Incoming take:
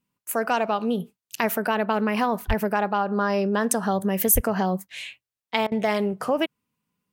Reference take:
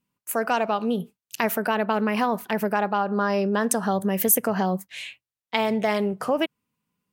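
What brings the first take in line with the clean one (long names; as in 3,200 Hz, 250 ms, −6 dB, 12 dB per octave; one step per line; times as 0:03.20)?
high-pass at the plosives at 0:02.47/0:04.34
repair the gap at 0:05.67, 46 ms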